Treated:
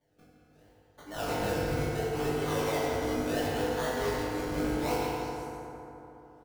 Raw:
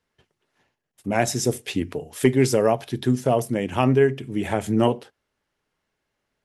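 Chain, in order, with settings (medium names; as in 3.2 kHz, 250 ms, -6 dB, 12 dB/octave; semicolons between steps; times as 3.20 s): high-pass 660 Hz 12 dB/octave; treble shelf 5.8 kHz +11 dB; reverse; compression 6:1, threshold -33 dBFS, peak gain reduction 15 dB; reverse; decimation with a swept rate 33×, swing 100% 0.73 Hz; in parallel at -5 dB: integer overflow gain 38 dB; on the sum: doubling 20 ms -3 dB; repeats whose band climbs or falls 171 ms, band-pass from 3.2 kHz, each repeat 0.7 oct, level -5 dB; FDN reverb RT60 3.4 s, high-frequency decay 0.4×, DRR -7.5 dB; trim -5 dB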